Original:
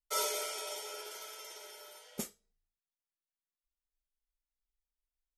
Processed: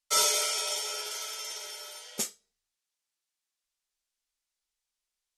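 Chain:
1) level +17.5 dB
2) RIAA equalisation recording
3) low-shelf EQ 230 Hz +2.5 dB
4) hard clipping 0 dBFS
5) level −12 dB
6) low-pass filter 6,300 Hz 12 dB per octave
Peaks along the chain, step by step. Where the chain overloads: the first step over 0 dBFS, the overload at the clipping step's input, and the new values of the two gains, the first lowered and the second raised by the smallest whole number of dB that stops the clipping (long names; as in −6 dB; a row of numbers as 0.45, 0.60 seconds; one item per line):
−2.5, +6.5, +6.5, 0.0, −12.0, −14.0 dBFS
step 2, 6.5 dB
step 1 +10.5 dB, step 5 −5 dB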